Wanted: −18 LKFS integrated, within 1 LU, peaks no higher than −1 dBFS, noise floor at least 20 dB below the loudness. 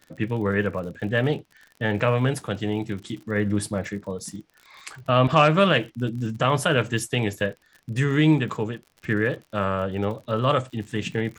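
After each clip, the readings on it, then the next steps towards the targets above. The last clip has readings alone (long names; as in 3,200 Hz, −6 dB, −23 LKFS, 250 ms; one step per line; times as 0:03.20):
crackle rate 54 per second; integrated loudness −24.0 LKFS; sample peak −3.5 dBFS; target loudness −18.0 LKFS
→ click removal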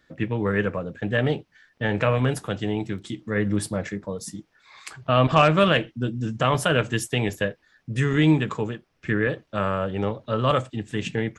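crackle rate 0.18 per second; integrated loudness −24.0 LKFS; sample peak −3.5 dBFS; target loudness −18.0 LKFS
→ level +6 dB
brickwall limiter −1 dBFS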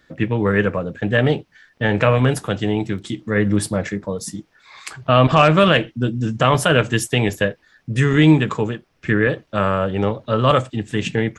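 integrated loudness −18.5 LKFS; sample peak −1.0 dBFS; background noise floor −62 dBFS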